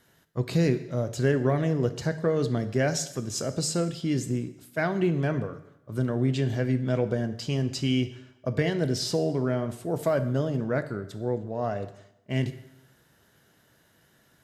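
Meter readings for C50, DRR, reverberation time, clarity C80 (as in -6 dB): 13.0 dB, 10.0 dB, 0.85 s, 15.5 dB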